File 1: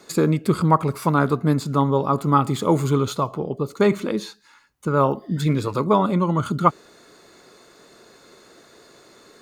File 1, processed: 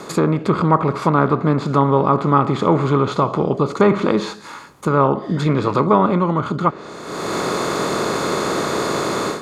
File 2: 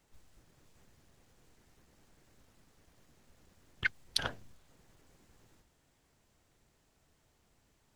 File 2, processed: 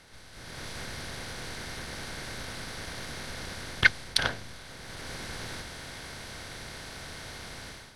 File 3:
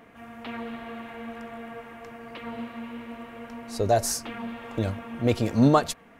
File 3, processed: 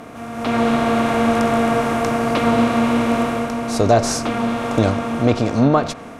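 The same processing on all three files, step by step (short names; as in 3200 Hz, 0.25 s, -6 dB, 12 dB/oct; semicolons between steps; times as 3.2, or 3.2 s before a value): per-bin compression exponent 0.6; treble ducked by the level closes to 2400 Hz, closed at -11.5 dBFS; AGC gain up to 14 dB; gain -1 dB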